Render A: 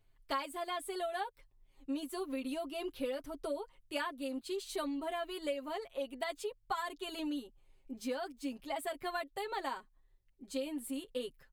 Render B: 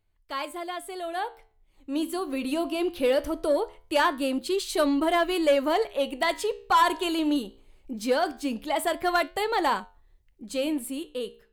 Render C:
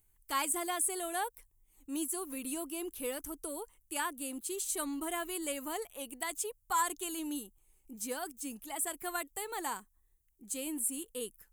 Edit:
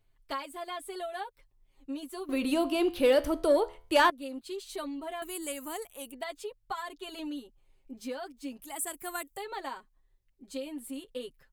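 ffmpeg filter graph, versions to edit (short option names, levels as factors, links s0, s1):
-filter_complex "[2:a]asplit=2[s0][s1];[0:a]asplit=4[s2][s3][s4][s5];[s2]atrim=end=2.292[s6];[1:a]atrim=start=2.288:end=4.102[s7];[s3]atrim=start=4.098:end=5.222[s8];[s0]atrim=start=5.218:end=6.122[s9];[s4]atrim=start=6.118:end=8.622[s10];[s1]atrim=start=8.618:end=9.372[s11];[s5]atrim=start=9.368[s12];[s6][s7]acrossfade=d=0.004:c1=hsin:c2=hsin[s13];[s13][s8]acrossfade=d=0.004:c1=hsin:c2=hsin[s14];[s14][s9]acrossfade=d=0.004:c1=hsin:c2=hsin[s15];[s15][s10]acrossfade=d=0.004:c1=hsin:c2=hsin[s16];[s16][s11]acrossfade=d=0.004:c1=hsin:c2=hsin[s17];[s17][s12]acrossfade=d=0.004:c1=hsin:c2=hsin"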